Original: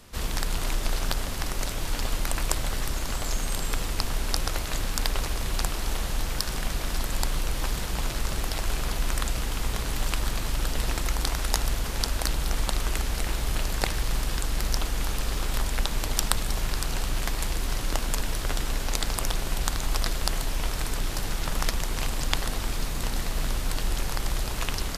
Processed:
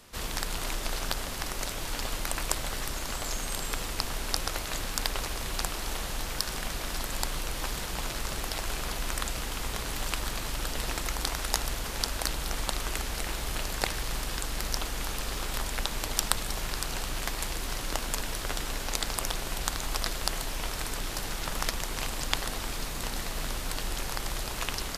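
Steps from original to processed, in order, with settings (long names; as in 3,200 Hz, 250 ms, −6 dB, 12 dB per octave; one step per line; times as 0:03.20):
low-shelf EQ 230 Hz −7 dB
level −1 dB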